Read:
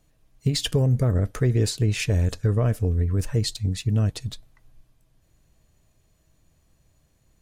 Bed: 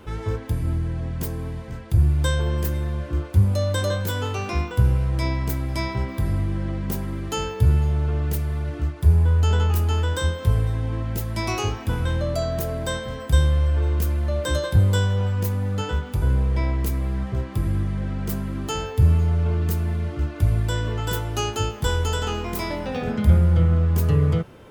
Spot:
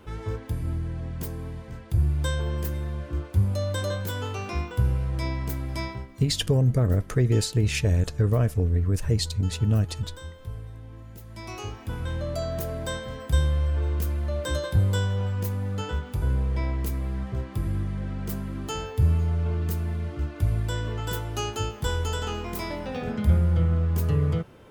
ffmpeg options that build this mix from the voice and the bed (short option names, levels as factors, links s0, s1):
-filter_complex "[0:a]adelay=5750,volume=0.944[s0];[1:a]volume=2.37,afade=t=out:st=5.84:d=0.24:silence=0.251189,afade=t=in:st=11.2:d=1.33:silence=0.237137[s1];[s0][s1]amix=inputs=2:normalize=0"